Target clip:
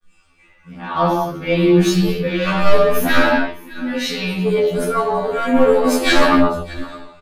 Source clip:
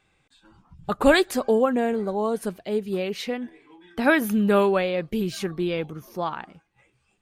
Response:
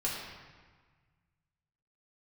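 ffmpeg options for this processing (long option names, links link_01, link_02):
-filter_complex "[0:a]areverse,volume=9.5dB,asoftclip=hard,volume=-9.5dB,asplit=2[link_01][link_02];[link_02]adelay=15,volume=-4dB[link_03];[link_01][link_03]amix=inputs=2:normalize=0,aeval=exprs='0.562*sin(PI/2*1.78*val(0)/0.562)':channel_layout=same,aecho=1:1:613:0.0794[link_04];[1:a]atrim=start_sample=2205,afade=type=out:start_time=0.33:duration=0.01,atrim=end_sample=14994[link_05];[link_04][link_05]afir=irnorm=-1:irlink=0,flanger=delay=5.4:depth=6.5:regen=43:speed=0.53:shape=sinusoidal,aeval=exprs='1.58*(cos(1*acos(clip(val(0)/1.58,-1,1)))-cos(1*PI/2))+0.708*(cos(5*acos(clip(val(0)/1.58,-1,1)))-cos(5*PI/2))':channel_layout=same,afftfilt=real='re*2*eq(mod(b,4),0)':imag='im*2*eq(mod(b,4),0)':win_size=2048:overlap=0.75,volume=-7.5dB"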